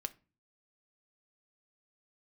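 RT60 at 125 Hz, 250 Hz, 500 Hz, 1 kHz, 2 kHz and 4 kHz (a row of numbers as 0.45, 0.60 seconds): 0.60, 0.55, 0.35, 0.30, 0.30, 0.25 seconds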